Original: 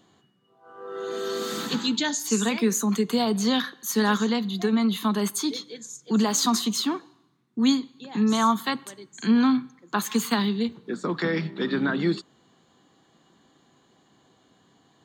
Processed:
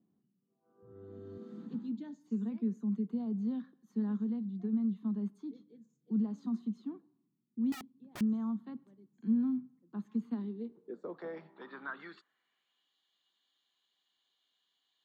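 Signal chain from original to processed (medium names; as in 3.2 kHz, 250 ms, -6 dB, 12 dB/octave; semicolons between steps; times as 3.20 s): 0.82–1.38 s: octave divider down 2 oct, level +4 dB; band-pass sweep 210 Hz -> 3.4 kHz, 10.16–12.93 s; 7.72–8.21 s: integer overflow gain 31.5 dB; trim -8.5 dB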